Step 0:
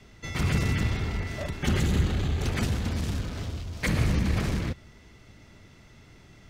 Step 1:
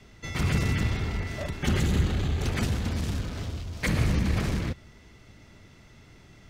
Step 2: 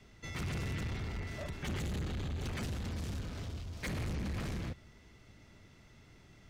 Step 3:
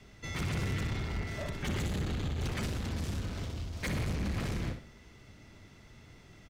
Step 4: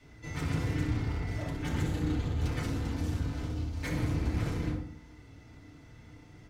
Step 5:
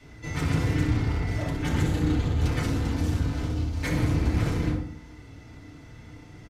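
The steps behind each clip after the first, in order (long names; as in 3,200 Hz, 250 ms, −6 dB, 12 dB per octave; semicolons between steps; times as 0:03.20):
no processing that can be heard
soft clipping −27 dBFS, distortion −9 dB; level −6.5 dB
repeating echo 62 ms, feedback 30%, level −8.5 dB; level +3.5 dB
feedback delay network reverb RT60 0.5 s, low-frequency decay 1.55×, high-frequency decay 0.4×, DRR −4.5 dB; level −6 dB
downsampling to 32,000 Hz; level +6.5 dB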